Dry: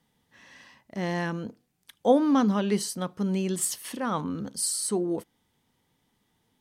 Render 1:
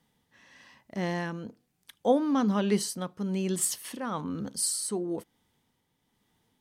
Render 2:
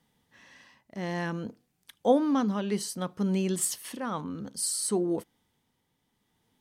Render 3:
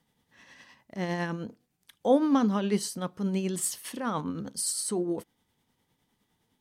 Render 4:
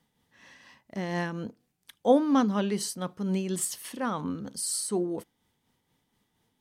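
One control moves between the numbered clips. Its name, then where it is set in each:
tremolo, rate: 1.1 Hz, 0.59 Hz, 9.8 Hz, 4.2 Hz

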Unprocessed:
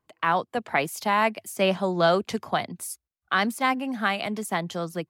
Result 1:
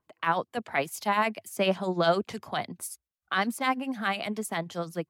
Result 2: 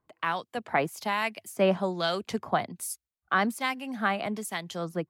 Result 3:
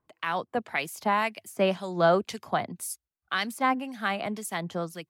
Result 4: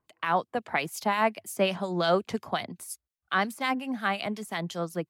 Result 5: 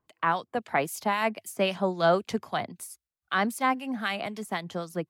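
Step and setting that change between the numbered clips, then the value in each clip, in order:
harmonic tremolo, rate: 10 Hz, 1.2 Hz, 1.9 Hz, 5.6 Hz, 3.8 Hz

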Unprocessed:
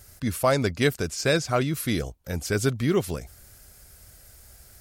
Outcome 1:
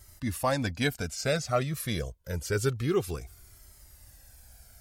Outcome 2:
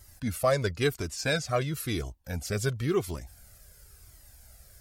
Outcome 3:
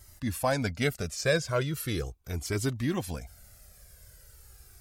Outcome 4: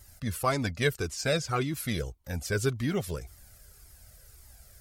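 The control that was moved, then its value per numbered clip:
Shepard-style flanger, rate: 0.27 Hz, 0.96 Hz, 0.39 Hz, 1.8 Hz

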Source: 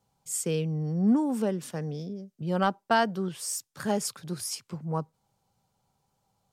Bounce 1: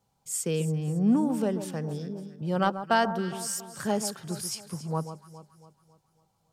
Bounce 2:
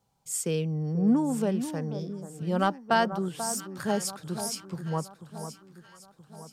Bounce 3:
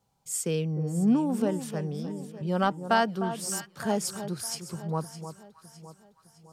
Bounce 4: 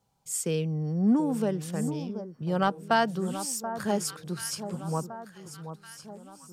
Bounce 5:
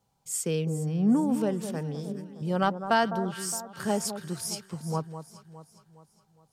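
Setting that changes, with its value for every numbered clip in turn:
echo whose repeats swap between lows and highs, time: 138 ms, 488 ms, 305 ms, 731 ms, 206 ms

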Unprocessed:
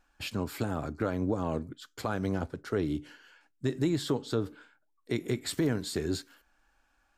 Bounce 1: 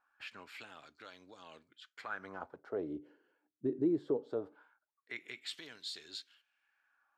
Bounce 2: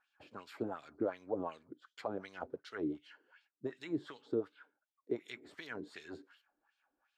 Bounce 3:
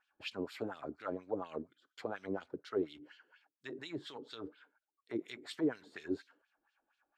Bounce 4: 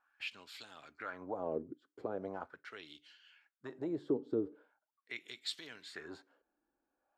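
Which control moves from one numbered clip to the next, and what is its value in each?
LFO band-pass, rate: 0.21 Hz, 2.7 Hz, 4.2 Hz, 0.41 Hz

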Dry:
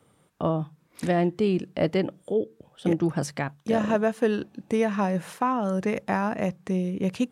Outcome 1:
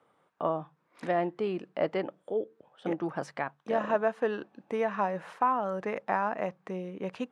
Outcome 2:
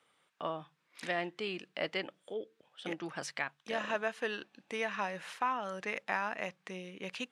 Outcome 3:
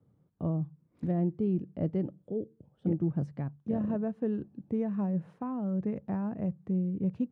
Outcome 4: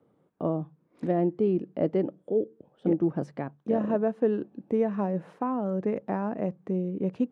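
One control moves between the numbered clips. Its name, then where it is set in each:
band-pass filter, frequency: 1 kHz, 2.6 kHz, 110 Hz, 340 Hz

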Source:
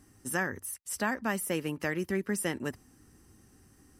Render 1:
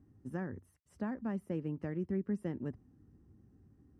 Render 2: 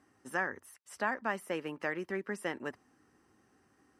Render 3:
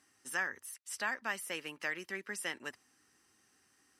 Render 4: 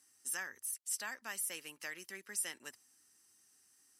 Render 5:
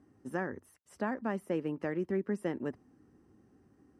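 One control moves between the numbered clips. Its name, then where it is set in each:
band-pass filter, frequency: 120 Hz, 1 kHz, 2.9 kHz, 7.5 kHz, 370 Hz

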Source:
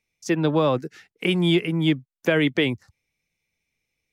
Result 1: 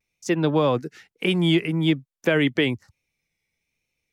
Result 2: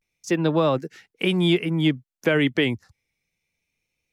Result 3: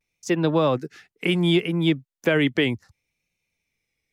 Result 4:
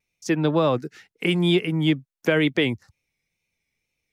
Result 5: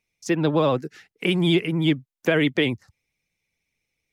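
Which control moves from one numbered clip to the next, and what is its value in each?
vibrato, rate: 1.1 Hz, 0.3 Hz, 0.68 Hz, 2.1 Hz, 16 Hz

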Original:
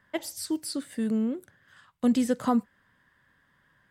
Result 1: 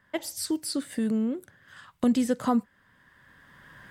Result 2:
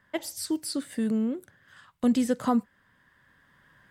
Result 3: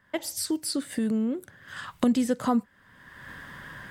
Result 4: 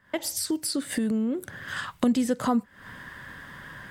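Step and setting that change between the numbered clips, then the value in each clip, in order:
recorder AGC, rising by: 13 dB/s, 5.1 dB/s, 32 dB/s, 80 dB/s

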